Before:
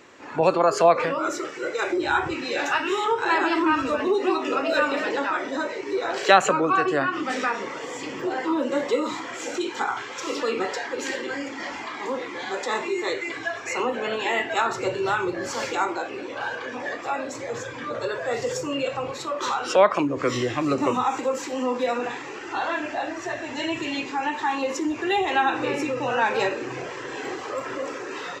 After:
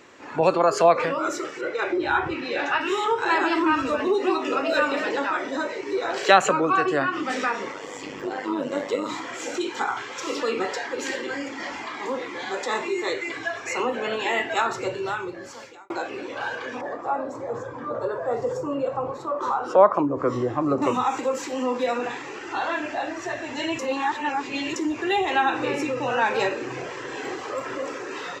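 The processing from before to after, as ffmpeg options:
-filter_complex "[0:a]asettb=1/sr,asplit=3[a][b][c];[a]atrim=end=1.614[d];[b]atrim=start=1.61:end=2.81,asetpts=PTS-STARTPTS,afade=t=in:d=0.004:c=qsin,afade=t=out:st=1.196:d=0.004:c=qsin,lowpass=3.7k[e];[c]atrim=start=2.806[f];[d][e]acrossfade=d=0.004:c1=hsin:c2=qsin[g];[g][f]acrossfade=d=0.004:c1=qsin:c2=hsin,asplit=3[h][i][j];[h]afade=t=out:st=7.71:d=0.02[k];[i]tremolo=f=100:d=0.621,afade=t=in:st=7.71:d=0.02,afade=t=out:st=9.08:d=0.02[l];[j]afade=t=in:st=9.08:d=0.02[m];[k][l][m]amix=inputs=3:normalize=0,asettb=1/sr,asplit=3[n][o][p];[n]atrim=end=16.814[q];[o]atrim=start=16.81:end=20.82,asetpts=PTS-STARTPTS,afade=t=in:d=0.004:c=qsin,afade=t=out:st=4.006:d=0.004:c=qsin,highshelf=f=1.6k:t=q:w=1.5:g=-13.5[r];[p]atrim=start=20.816[s];[q][r]acrossfade=d=0.004:c1=hsin:c2=qsin[t];[t][s]acrossfade=d=0.004:c1=qsin:c2=hsin,asplit=4[u][v][w][x];[u]atrim=end=15.9,asetpts=PTS-STARTPTS,afade=t=out:st=14.59:d=1.31[y];[v]atrim=start=15.9:end=23.792,asetpts=PTS-STARTPTS,afade=t=in:d=0.004:c=hsin[z];[w]atrim=start=23.788:end=24.762,asetpts=PTS-STARTPTS,areverse[aa];[x]atrim=start=24.758[ab];[y][z]concat=n=2:v=0:a=1[ac];[ac][aa]acrossfade=d=0.004:c1=hsin:c2=hsin[ad];[ad][ab]acrossfade=d=0.004:c1=hsin:c2=hsin"

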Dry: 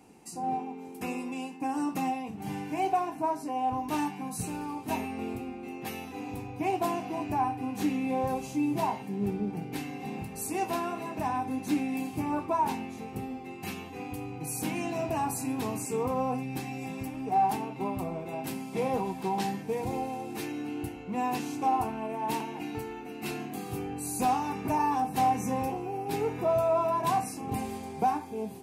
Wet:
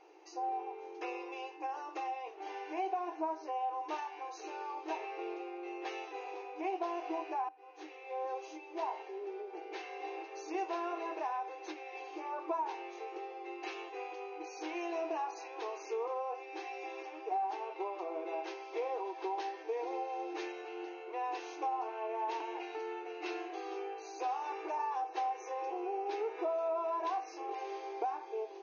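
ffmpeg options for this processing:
-filter_complex "[0:a]asplit=2[a][b];[a]atrim=end=7.49,asetpts=PTS-STARTPTS,afade=t=out:st=7.486:d=0.004:c=hsin:silence=0.11885[c];[b]atrim=start=7.49,asetpts=PTS-STARTPTS,afade=t=in:d=1.64:silence=0.11885[d];[c][d]concat=n=2:v=0:a=1,acompressor=threshold=-32dB:ratio=6,highshelf=f=5k:g=-10.5,afftfilt=real='re*between(b*sr/4096,310,6700)':imag='im*between(b*sr/4096,310,6700)':win_size=4096:overlap=0.75"

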